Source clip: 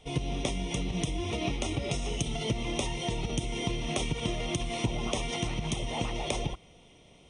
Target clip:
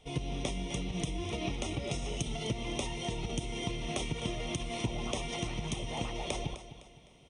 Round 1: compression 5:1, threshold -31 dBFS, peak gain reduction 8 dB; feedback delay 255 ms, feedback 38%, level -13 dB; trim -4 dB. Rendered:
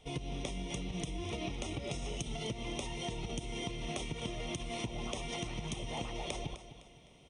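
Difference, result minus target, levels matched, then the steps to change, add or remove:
compression: peak gain reduction +8 dB
remove: compression 5:1, threshold -31 dBFS, peak gain reduction 8 dB

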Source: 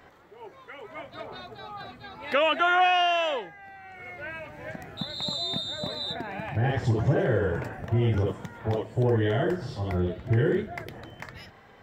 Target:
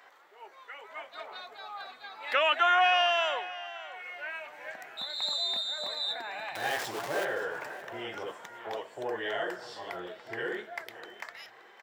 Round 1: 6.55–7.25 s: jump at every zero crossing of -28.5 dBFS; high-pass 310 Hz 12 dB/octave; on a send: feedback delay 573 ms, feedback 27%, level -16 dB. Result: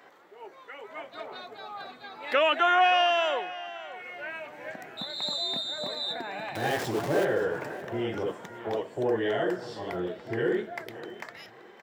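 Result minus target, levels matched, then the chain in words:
250 Hz band +9.5 dB
6.55–7.25 s: jump at every zero crossing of -28.5 dBFS; high-pass 760 Hz 12 dB/octave; on a send: feedback delay 573 ms, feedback 27%, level -16 dB

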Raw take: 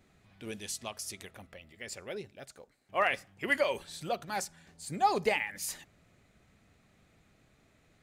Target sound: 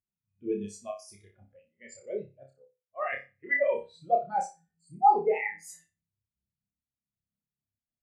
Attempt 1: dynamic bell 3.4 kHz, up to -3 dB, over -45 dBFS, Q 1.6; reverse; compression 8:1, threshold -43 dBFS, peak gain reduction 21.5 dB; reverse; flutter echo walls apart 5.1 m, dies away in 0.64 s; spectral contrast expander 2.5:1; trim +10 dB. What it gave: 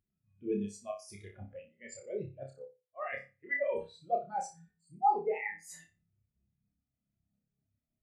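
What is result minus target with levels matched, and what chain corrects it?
compression: peak gain reduction +7.5 dB
dynamic bell 3.4 kHz, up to -3 dB, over -45 dBFS, Q 1.6; reverse; compression 8:1, threshold -34.5 dBFS, peak gain reduction 14 dB; reverse; flutter echo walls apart 5.1 m, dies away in 0.64 s; spectral contrast expander 2.5:1; trim +10 dB

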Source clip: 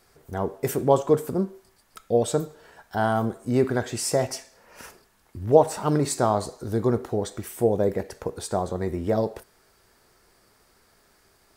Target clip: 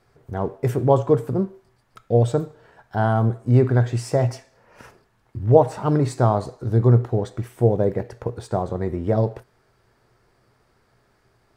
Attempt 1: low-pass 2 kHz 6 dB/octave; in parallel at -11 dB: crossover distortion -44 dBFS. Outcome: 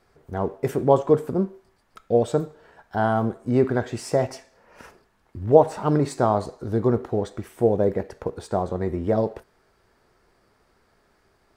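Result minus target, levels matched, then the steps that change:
125 Hz band -6.5 dB
add after low-pass: peaking EQ 120 Hz +14.5 dB 0.26 oct

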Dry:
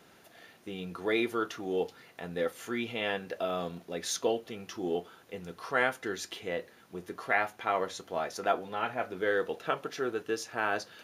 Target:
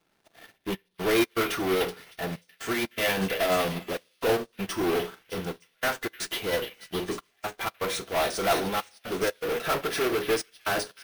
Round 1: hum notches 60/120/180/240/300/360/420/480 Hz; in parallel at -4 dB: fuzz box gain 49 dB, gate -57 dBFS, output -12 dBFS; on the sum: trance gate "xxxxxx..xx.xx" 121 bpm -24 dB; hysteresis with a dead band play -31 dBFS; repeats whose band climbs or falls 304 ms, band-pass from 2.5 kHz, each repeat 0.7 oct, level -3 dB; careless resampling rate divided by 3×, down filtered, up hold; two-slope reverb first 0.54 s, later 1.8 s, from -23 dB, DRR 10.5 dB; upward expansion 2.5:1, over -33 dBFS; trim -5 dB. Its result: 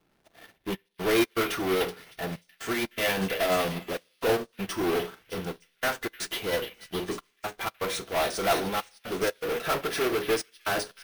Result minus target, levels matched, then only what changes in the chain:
hysteresis with a dead band: distortion +8 dB
change: hysteresis with a dead band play -40.5 dBFS

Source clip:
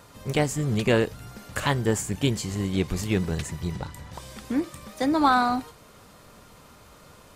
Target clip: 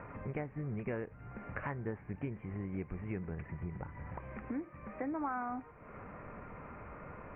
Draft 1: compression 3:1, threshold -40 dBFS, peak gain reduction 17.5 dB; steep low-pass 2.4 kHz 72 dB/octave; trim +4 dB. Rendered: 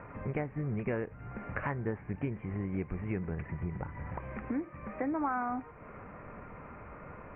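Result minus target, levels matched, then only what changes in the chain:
compression: peak gain reduction -4.5 dB
change: compression 3:1, threshold -47 dBFS, peak gain reduction 22.5 dB

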